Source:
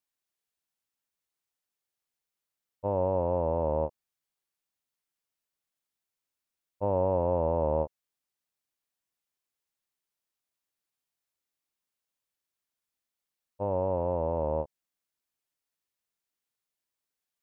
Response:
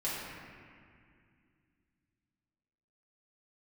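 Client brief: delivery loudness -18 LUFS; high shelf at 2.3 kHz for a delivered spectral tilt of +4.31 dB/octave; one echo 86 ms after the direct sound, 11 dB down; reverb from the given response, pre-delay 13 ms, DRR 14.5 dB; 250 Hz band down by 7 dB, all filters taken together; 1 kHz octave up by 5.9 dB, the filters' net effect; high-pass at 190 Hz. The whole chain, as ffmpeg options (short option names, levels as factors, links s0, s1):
-filter_complex "[0:a]highpass=190,equalizer=f=250:t=o:g=-8.5,equalizer=f=1000:t=o:g=7,highshelf=f=2300:g=4,aecho=1:1:86:0.282,asplit=2[s0][s1];[1:a]atrim=start_sample=2205,adelay=13[s2];[s1][s2]afir=irnorm=-1:irlink=0,volume=0.0944[s3];[s0][s3]amix=inputs=2:normalize=0,volume=3.16"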